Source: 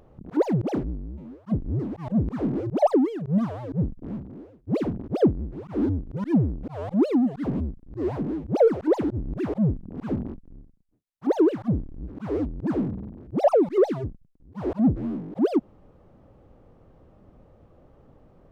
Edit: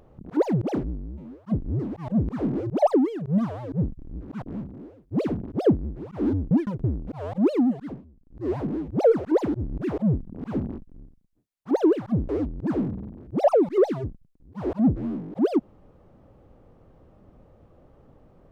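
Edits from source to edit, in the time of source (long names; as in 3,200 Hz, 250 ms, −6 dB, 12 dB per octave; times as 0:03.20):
0:06.07–0:06.40: reverse
0:07.26–0:08.03: duck −23.5 dB, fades 0.32 s
0:11.85–0:12.29: move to 0:03.98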